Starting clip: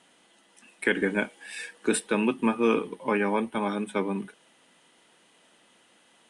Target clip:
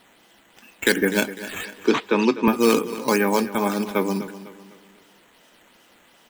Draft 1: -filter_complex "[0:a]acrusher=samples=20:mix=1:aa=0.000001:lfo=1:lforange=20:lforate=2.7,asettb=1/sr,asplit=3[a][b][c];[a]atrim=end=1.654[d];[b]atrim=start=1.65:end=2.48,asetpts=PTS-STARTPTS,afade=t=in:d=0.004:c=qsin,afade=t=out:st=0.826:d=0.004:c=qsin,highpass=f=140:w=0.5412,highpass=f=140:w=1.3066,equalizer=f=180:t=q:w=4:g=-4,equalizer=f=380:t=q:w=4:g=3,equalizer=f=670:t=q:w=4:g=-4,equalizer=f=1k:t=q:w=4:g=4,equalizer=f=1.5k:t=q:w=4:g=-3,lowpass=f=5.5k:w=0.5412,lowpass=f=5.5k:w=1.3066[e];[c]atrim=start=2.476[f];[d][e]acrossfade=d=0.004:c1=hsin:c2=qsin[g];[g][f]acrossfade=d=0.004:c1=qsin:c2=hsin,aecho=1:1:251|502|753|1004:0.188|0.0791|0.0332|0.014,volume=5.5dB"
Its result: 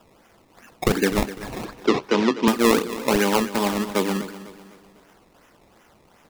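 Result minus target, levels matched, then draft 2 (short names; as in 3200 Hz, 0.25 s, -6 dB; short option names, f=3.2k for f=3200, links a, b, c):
decimation with a swept rate: distortion +8 dB
-filter_complex "[0:a]acrusher=samples=6:mix=1:aa=0.000001:lfo=1:lforange=6:lforate=2.7,asettb=1/sr,asplit=3[a][b][c];[a]atrim=end=1.654[d];[b]atrim=start=1.65:end=2.48,asetpts=PTS-STARTPTS,afade=t=in:d=0.004:c=qsin,afade=t=out:st=0.826:d=0.004:c=qsin,highpass=f=140:w=0.5412,highpass=f=140:w=1.3066,equalizer=f=180:t=q:w=4:g=-4,equalizer=f=380:t=q:w=4:g=3,equalizer=f=670:t=q:w=4:g=-4,equalizer=f=1k:t=q:w=4:g=4,equalizer=f=1.5k:t=q:w=4:g=-3,lowpass=f=5.5k:w=0.5412,lowpass=f=5.5k:w=1.3066[e];[c]atrim=start=2.476[f];[d][e]acrossfade=d=0.004:c1=hsin:c2=qsin[g];[g][f]acrossfade=d=0.004:c1=qsin:c2=hsin,aecho=1:1:251|502|753|1004:0.188|0.0791|0.0332|0.014,volume=5.5dB"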